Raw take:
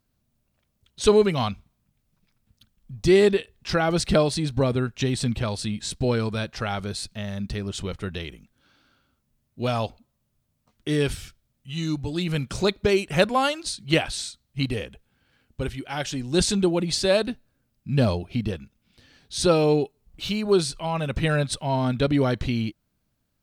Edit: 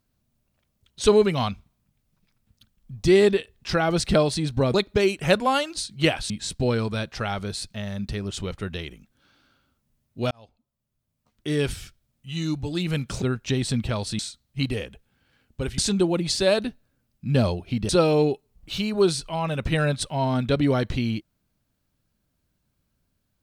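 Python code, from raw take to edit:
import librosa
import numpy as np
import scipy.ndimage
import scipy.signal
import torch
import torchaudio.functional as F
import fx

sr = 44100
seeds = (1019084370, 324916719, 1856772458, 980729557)

y = fx.edit(x, sr, fx.swap(start_s=4.74, length_s=0.97, other_s=12.63, other_length_s=1.56),
    fx.fade_in_span(start_s=9.72, length_s=1.45),
    fx.cut(start_s=15.78, length_s=0.63),
    fx.cut(start_s=18.52, length_s=0.88), tone=tone)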